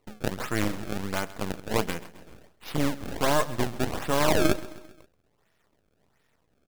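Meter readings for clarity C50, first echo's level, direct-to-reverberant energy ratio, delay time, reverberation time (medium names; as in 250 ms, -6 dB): no reverb, -18.0 dB, no reverb, 132 ms, no reverb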